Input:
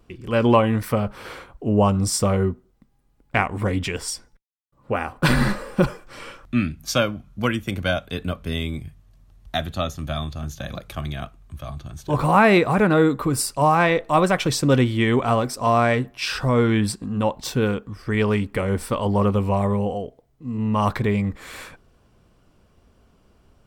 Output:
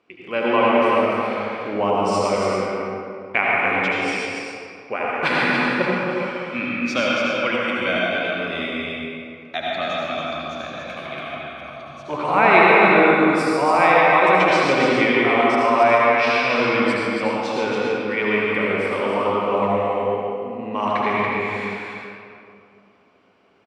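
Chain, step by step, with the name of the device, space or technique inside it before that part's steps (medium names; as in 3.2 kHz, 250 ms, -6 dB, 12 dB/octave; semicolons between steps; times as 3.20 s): station announcement (band-pass 330–4100 Hz; peaking EQ 2.3 kHz +9.5 dB 0.36 oct; loudspeakers at several distances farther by 49 m -10 dB, 97 m -5 dB; reverberation RT60 2.4 s, pre-delay 68 ms, DRR -4.5 dB); trim -3 dB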